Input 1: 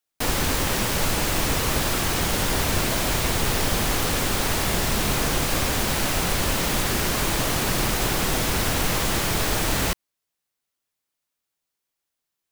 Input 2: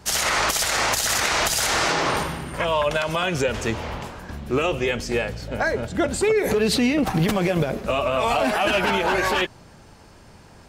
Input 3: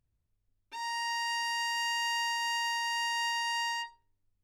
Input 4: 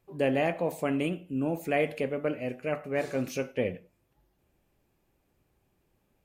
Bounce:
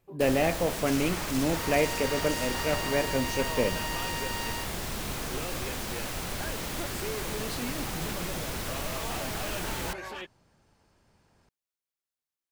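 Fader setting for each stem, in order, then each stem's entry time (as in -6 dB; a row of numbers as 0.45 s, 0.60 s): -11.5 dB, -18.0 dB, -5.0 dB, +1.5 dB; 0.00 s, 0.80 s, 0.80 s, 0.00 s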